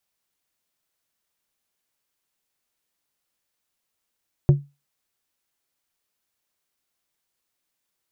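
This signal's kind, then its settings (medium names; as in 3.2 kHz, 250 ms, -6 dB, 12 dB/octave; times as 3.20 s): glass hit plate, lowest mode 142 Hz, decay 0.25 s, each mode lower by 10 dB, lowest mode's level -7 dB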